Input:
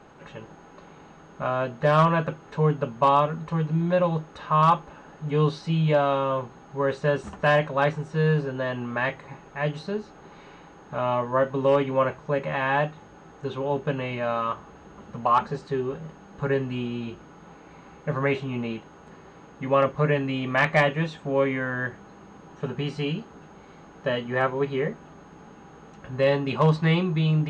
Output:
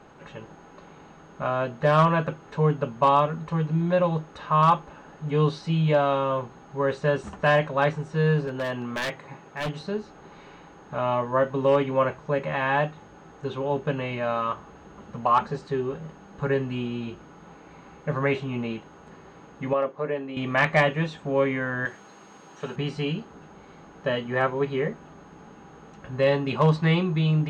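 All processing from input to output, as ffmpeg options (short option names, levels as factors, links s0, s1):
-filter_complex "[0:a]asettb=1/sr,asplit=3[s0][s1][s2];[s0]atrim=end=8.474[s3];[s1]atrim=start=8.47:end=9.81,asetpts=PTS-STARTPTS,afade=t=in:d=0.004:c=qsin,afade=t=out:st=1.336:d=0.004:c=qsin,highpass=110,aeval=exprs='0.075*(abs(mod(val(0)/0.075+3,4)-2)-1)':c=same[s4];[s2]atrim=start=9.806[s5];[s3][s4]acrossfade=d=0.004:c1=hsin:c2=qsin[s6];[s6][s5]acrossfade=d=0.004:c1=qsin:c2=hsin,asettb=1/sr,asplit=3[s7][s8][s9];[s7]atrim=end=19.734[s10];[s8]atrim=start=19.73:end=20.37,asetpts=PTS-STARTPTS,afade=t=in:d=0.004:c=qsin,afade=t=out:st=0.636:d=0.004:c=qsin,highpass=350,lowpass=4800,equalizer=f=2500:w=0.39:g=-10[s11];[s9]atrim=start=20.366[s12];[s10][s11]acrossfade=d=0.004:c1=hsin:c2=qsin[s13];[s13][s12]acrossfade=d=0.004:c1=qsin:c2=hsin,asettb=1/sr,asplit=3[s14][s15][s16];[s14]atrim=end=21.854[s17];[s15]atrim=start=21.85:end=22.76,asetpts=PTS-STARTPTS,afade=t=in:d=0.004:c=qsin,afade=t=out:st=0.906:d=0.004:c=qsin,highpass=f=330:p=1,highshelf=f=2900:g=10[s18];[s16]atrim=start=22.756[s19];[s17][s18]acrossfade=d=0.004:c1=hsin:c2=qsin[s20];[s20][s19]acrossfade=d=0.004:c1=qsin:c2=hsin"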